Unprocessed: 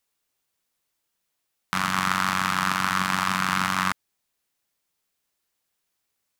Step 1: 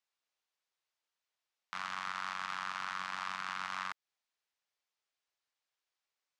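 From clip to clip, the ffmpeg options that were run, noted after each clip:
-filter_complex "[0:a]acrossover=split=460 6800:gain=0.178 1 0.0708[a][b][c];[a][b][c]amix=inputs=3:normalize=0,alimiter=limit=-18dB:level=0:latency=1:release=178,volume=-7.5dB"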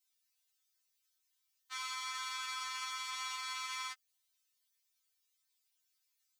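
-af "aderivative,afftfilt=real='re*3.46*eq(mod(b,12),0)':imag='im*3.46*eq(mod(b,12),0)':win_size=2048:overlap=0.75,volume=13dB"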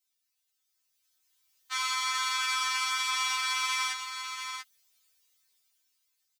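-af "dynaudnorm=f=270:g=9:m=11dB,aecho=1:1:687:0.422"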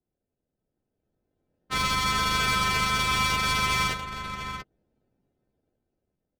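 -filter_complex "[0:a]asplit=2[a][b];[b]acrusher=samples=40:mix=1:aa=0.000001,volume=-8dB[c];[a][c]amix=inputs=2:normalize=0,adynamicsmooth=sensitivity=7:basefreq=820,volume=5dB"

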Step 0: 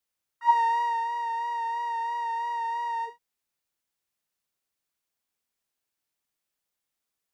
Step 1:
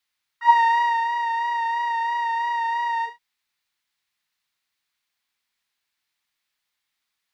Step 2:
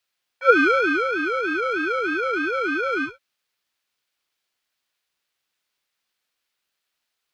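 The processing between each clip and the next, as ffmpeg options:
-af "equalizer=f=500:t=o:w=1:g=-5,equalizer=f=1k:t=o:w=1:g=5,equalizer=f=2k:t=o:w=1:g=9,equalizer=f=4k:t=o:w=1:g=9"
-af "aeval=exprs='val(0)*sin(2*PI*520*n/s+520*0.25/3.3*sin(2*PI*3.3*n/s))':c=same,volume=3.5dB"

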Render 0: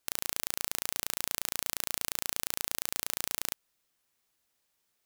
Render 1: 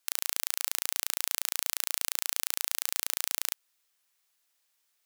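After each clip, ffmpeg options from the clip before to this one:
-af "highpass=f=1.2k:p=1,volume=3dB"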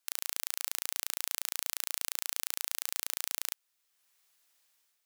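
-af "dynaudnorm=f=150:g=5:m=8dB,volume=-4.5dB"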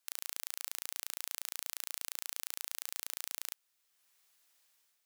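-af "alimiter=limit=-11dB:level=0:latency=1:release=15"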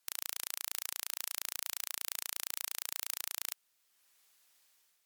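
-af "volume=3dB" -ar 48000 -c:a libmp3lame -b:a 112k

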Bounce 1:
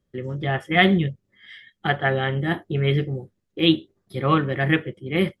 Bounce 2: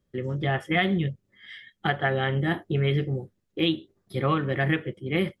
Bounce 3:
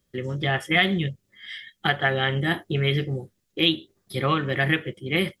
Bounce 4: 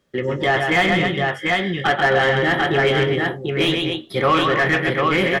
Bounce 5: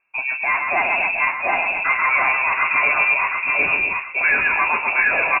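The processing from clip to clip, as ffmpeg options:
-af "acompressor=threshold=-20dB:ratio=6"
-af "highshelf=f=2.2k:g=11.5"
-filter_complex "[0:a]asplit=2[a][b];[b]adelay=17,volume=-11.5dB[c];[a][c]amix=inputs=2:normalize=0,aecho=1:1:134|257|742:0.447|0.266|0.562,asplit=2[d][e];[e]highpass=f=720:p=1,volume=22dB,asoftclip=type=tanh:threshold=-3.5dB[f];[d][f]amix=inputs=2:normalize=0,lowpass=f=1k:p=1,volume=-6dB"
-af "flanger=delay=2.4:depth=3.3:regen=72:speed=1.3:shape=sinusoidal,aecho=1:1:720|1440|2160:0.631|0.151|0.0363,lowpass=f=2.4k:t=q:w=0.5098,lowpass=f=2.4k:t=q:w=0.6013,lowpass=f=2.4k:t=q:w=0.9,lowpass=f=2.4k:t=q:w=2.563,afreqshift=-2800,volume=2.5dB"

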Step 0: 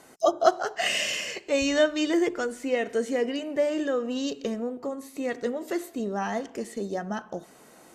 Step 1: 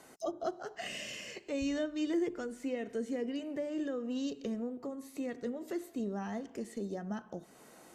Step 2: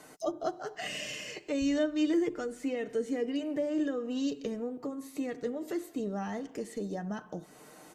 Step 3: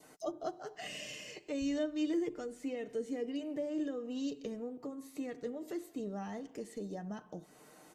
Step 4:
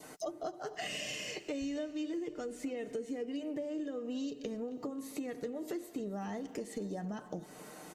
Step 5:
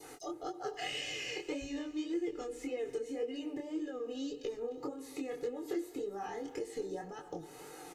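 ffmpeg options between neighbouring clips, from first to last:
-filter_complex "[0:a]acrossover=split=340[a][b];[b]acompressor=threshold=-45dB:ratio=2[c];[a][c]amix=inputs=2:normalize=0,volume=-4dB"
-af "aecho=1:1:6.6:0.43,volume=3dB"
-af "adynamicequalizer=threshold=0.00158:dfrequency=1500:dqfactor=1.8:tfrequency=1500:tqfactor=1.8:attack=5:release=100:ratio=0.375:range=2.5:mode=cutabove:tftype=bell,volume=-5.5dB"
-af "acompressor=threshold=-44dB:ratio=6,aecho=1:1:270|540|810|1080|1350:0.112|0.0651|0.0377|0.0219|0.0127,volume=8dB"
-filter_complex "[0:a]aecho=1:1:2.4:0.97,acrossover=split=5700[a][b];[b]alimiter=level_in=23dB:limit=-24dB:level=0:latency=1,volume=-23dB[c];[a][c]amix=inputs=2:normalize=0,flanger=delay=19.5:depth=7:speed=1.8,volume=1dB"

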